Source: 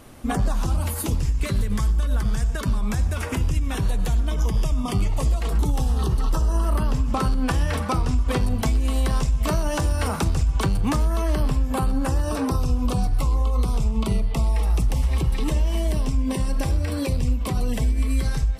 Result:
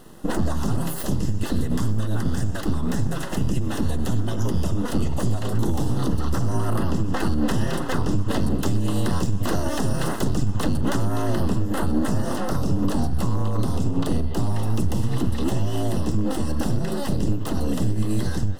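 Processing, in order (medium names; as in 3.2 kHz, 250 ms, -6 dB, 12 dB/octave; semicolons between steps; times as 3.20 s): full-wave rectifier; Butterworth band-stop 2.3 kHz, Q 4.3; peaking EQ 250 Hz +6.5 dB 1.5 oct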